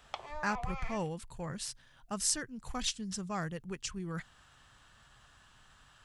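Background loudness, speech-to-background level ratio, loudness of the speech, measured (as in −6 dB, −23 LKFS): −43.5 LKFS, 6.5 dB, −37.0 LKFS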